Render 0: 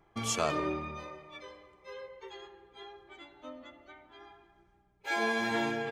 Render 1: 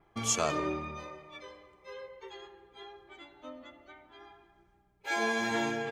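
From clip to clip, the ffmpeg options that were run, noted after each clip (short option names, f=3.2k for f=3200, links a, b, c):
-af "adynamicequalizer=threshold=0.001:dfrequency=6600:dqfactor=3.3:tfrequency=6600:tqfactor=3.3:attack=5:release=100:ratio=0.375:range=3.5:mode=boostabove:tftype=bell"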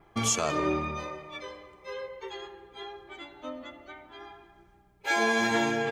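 -af "alimiter=limit=-22.5dB:level=0:latency=1:release=277,volume=7dB"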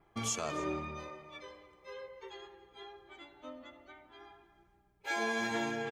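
-af "aecho=1:1:290:0.0891,volume=-8.5dB"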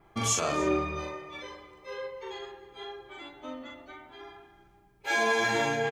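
-filter_complex "[0:a]asplit=2[a][b];[b]adelay=42,volume=-2dB[c];[a][c]amix=inputs=2:normalize=0,volume=6dB"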